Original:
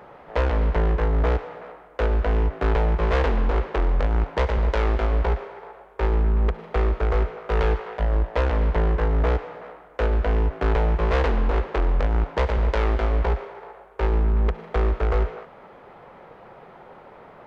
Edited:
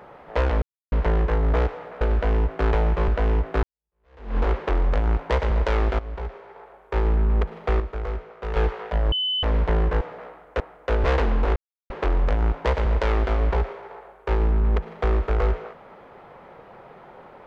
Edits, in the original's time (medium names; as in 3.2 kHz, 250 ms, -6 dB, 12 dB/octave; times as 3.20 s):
0.62 s: insert silence 0.30 s
1.71–2.15 s: swap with 10.03–11.10 s
2.70–3.44 s: fade in exponential
5.06–6.11 s: fade in linear, from -15.5 dB
6.87–7.63 s: gain -7.5 dB
8.19–8.50 s: bleep 3.02 kHz -21.5 dBFS
9.08–9.44 s: delete
11.62 s: insert silence 0.34 s